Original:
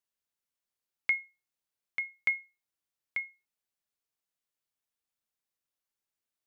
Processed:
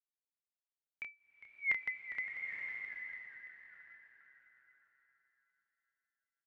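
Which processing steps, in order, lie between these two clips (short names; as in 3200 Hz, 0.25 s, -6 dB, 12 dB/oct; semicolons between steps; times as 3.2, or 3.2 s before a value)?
regenerating reverse delay 0.369 s, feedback 52%, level -2.5 dB; Doppler pass-by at 1.68, 23 m/s, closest 1.5 m; LPF 3400 Hz 6 dB/oct; on a send: frequency-shifting echo 0.405 s, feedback 52%, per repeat -130 Hz, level -13.5 dB; on the sum: bloom reverb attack 0.98 s, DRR 4 dB; gain +6.5 dB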